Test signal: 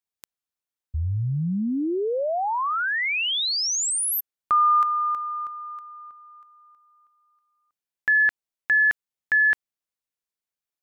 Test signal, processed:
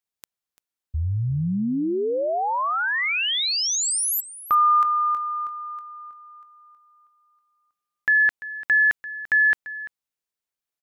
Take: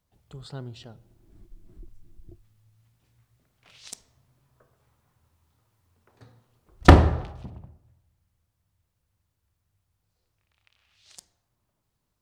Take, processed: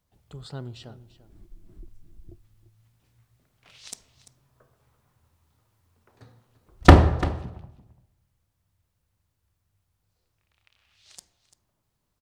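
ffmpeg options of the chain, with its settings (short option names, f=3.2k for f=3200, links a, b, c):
-af "aecho=1:1:342:0.158,volume=1dB"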